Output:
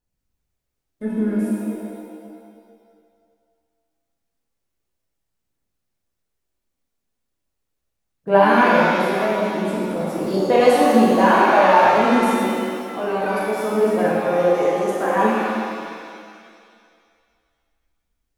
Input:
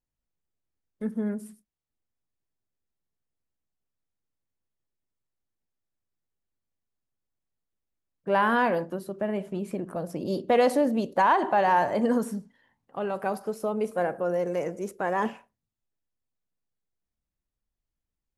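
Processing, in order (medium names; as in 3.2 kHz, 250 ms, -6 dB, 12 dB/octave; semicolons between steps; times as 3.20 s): phaser 0.36 Hz, delay 4.5 ms, feedback 37%; pitch-shifted reverb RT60 2.1 s, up +7 st, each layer -8 dB, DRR -6 dB; trim +1.5 dB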